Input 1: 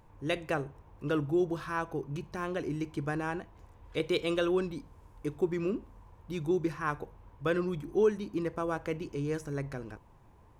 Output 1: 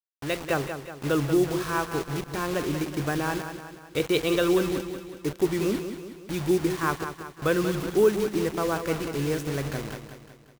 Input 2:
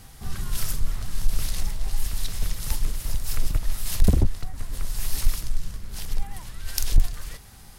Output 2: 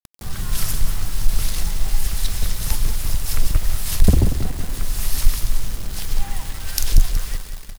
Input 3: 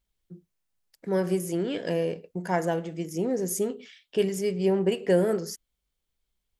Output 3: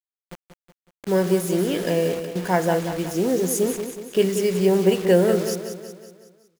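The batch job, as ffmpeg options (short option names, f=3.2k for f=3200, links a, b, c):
-af "dynaudnorm=f=140:g=5:m=5.5dB,acrusher=bits=5:mix=0:aa=0.000001,aecho=1:1:185|370|555|740|925|1110:0.355|0.181|0.0923|0.0471|0.024|0.0122"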